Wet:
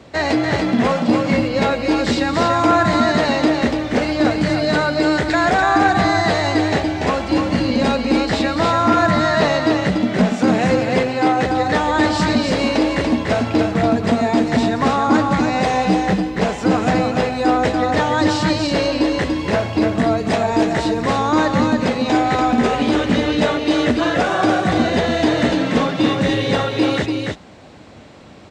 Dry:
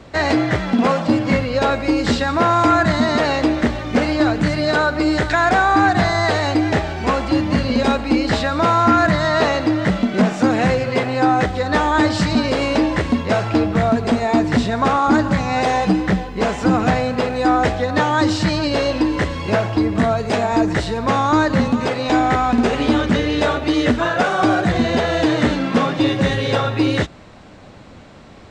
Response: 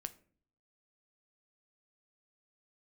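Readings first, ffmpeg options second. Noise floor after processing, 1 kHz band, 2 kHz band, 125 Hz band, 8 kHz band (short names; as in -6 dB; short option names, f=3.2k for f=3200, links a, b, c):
-28 dBFS, 0.0 dB, 0.0 dB, -1.5 dB, +1.5 dB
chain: -filter_complex "[0:a]highpass=f=110:p=1,equalizer=f=1.3k:w=1.5:g=-3,asplit=2[a][b];[b]aecho=0:1:289:0.631[c];[a][c]amix=inputs=2:normalize=0"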